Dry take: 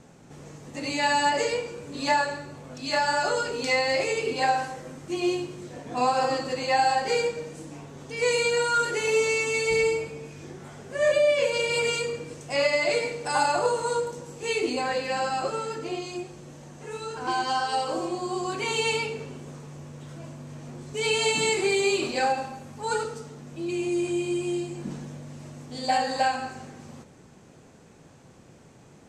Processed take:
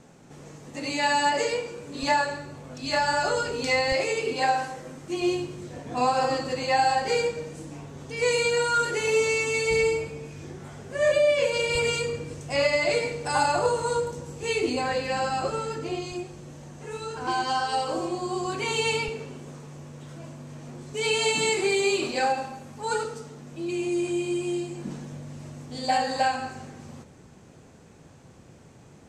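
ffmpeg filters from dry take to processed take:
-af "asetnsamples=n=441:p=0,asendcmd='2.03 equalizer g 3.5;2.84 equalizer g 10;3.92 equalizer g -1.5;5.21 equalizer g 7.5;11.75 equalizer g 13.5;16.12 equalizer g 7;19.08 equalizer g -2;25.12 equalizer g 5',equalizer=f=71:t=o:w=1.6:g=-3"

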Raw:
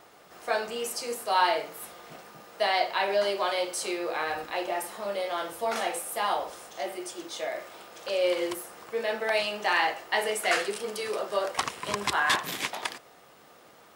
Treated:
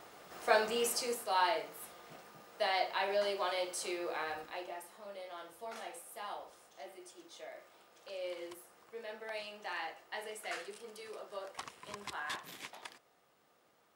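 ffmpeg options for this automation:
-af "volume=0.944,afade=t=out:st=0.89:d=0.4:silence=0.446684,afade=t=out:st=4.12:d=0.71:silence=0.375837"

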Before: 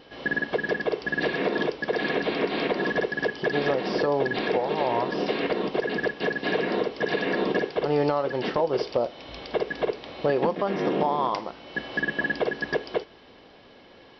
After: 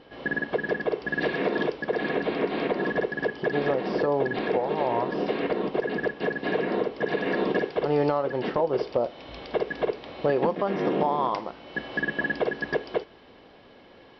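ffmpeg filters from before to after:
-af "asetnsamples=n=441:p=0,asendcmd='1.11 lowpass f 3200;1.82 lowpass f 1800;7.26 lowpass f 3200;8.17 lowpass f 2000;9.04 lowpass f 3200',lowpass=f=2100:p=1"

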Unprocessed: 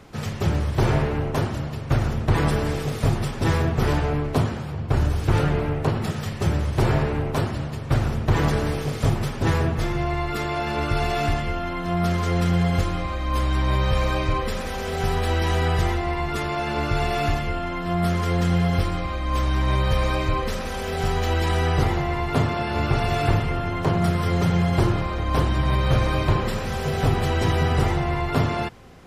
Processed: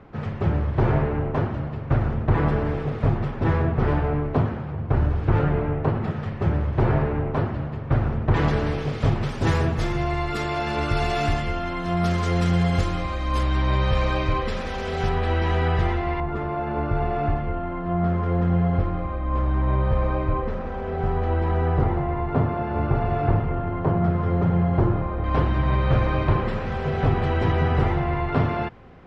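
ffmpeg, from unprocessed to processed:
-af "asetnsamples=n=441:p=0,asendcmd='8.34 lowpass f 3700;9.29 lowpass f 8000;13.43 lowpass f 4400;15.09 lowpass f 2700;16.2 lowpass f 1200;25.24 lowpass f 2300',lowpass=1800"

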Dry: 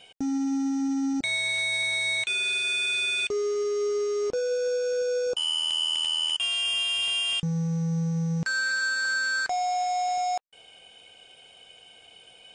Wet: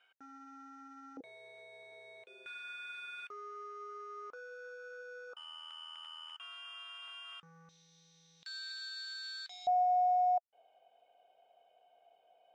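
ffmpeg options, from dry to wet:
-af "asetnsamples=n=441:p=0,asendcmd='1.17 bandpass f 490;2.46 bandpass f 1300;7.69 bandpass f 3700;9.67 bandpass f 690',bandpass=f=1400:t=q:w=7.3:csg=0"

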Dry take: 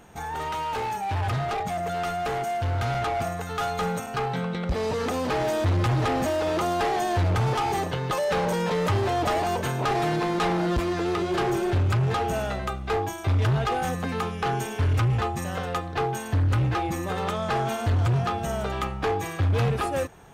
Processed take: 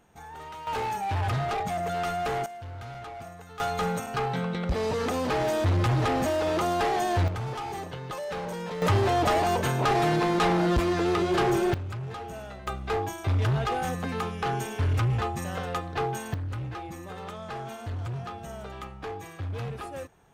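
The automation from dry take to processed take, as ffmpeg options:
-af "asetnsamples=n=441:p=0,asendcmd='0.67 volume volume -1dB;2.46 volume volume -13.5dB;3.6 volume volume -1dB;7.28 volume volume -9dB;8.82 volume volume 1dB;11.74 volume volume -12dB;12.67 volume volume -2.5dB;16.34 volume volume -11dB',volume=0.282"

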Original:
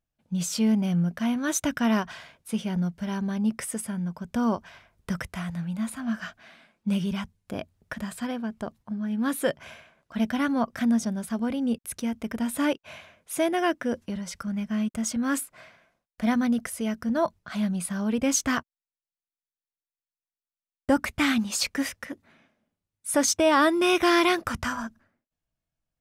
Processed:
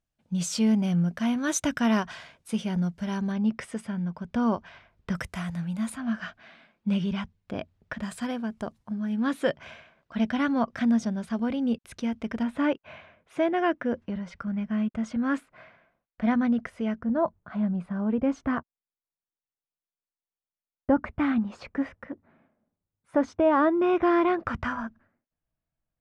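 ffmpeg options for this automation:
-af "asetnsamples=n=441:p=0,asendcmd='3.32 lowpass f 4000;5.15 lowpass f 11000;5.96 lowpass f 4100;8.03 lowpass f 9900;9.2 lowpass f 4600;12.43 lowpass f 2300;16.99 lowpass f 1200;24.4 lowpass f 2200',lowpass=9200"

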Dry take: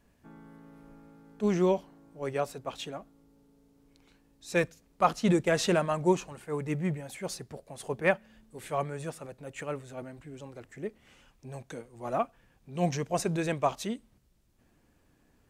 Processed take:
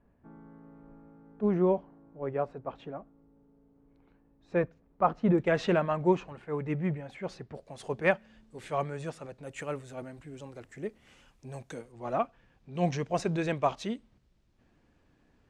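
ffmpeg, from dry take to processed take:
-af "asetnsamples=n=441:p=0,asendcmd='5.38 lowpass f 2700;7.55 lowpass f 6200;9.43 lowpass f 11000;11.92 lowpass f 4800',lowpass=1300"

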